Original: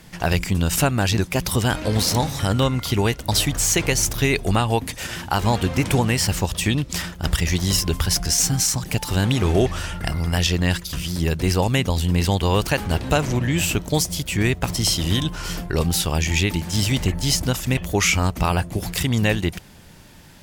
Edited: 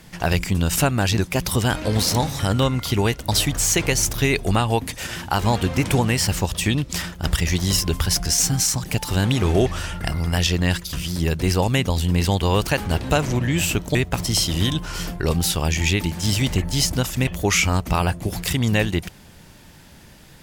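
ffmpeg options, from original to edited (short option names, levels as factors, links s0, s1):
-filter_complex "[0:a]asplit=2[s0][s1];[s0]atrim=end=13.952[s2];[s1]atrim=start=14.448[s3];[s2][s3]acrossfade=d=0.004:c1=hsin:c2=hsin"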